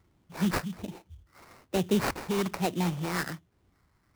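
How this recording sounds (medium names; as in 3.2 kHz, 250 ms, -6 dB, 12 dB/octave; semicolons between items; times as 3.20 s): phasing stages 4, 1.2 Hz, lowest notch 620–1700 Hz; aliases and images of a low sample rate 3.3 kHz, jitter 20%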